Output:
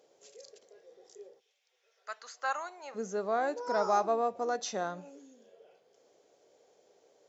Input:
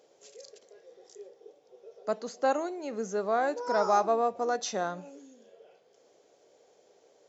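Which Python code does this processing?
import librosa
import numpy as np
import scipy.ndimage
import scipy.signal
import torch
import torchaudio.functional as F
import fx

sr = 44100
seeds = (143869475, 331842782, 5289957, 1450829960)

y = fx.highpass_res(x, sr, hz=fx.line((1.39, 2600.0), (2.94, 890.0)), q=2.1, at=(1.39, 2.94), fade=0.02)
y = y * 10.0 ** (-3.0 / 20.0)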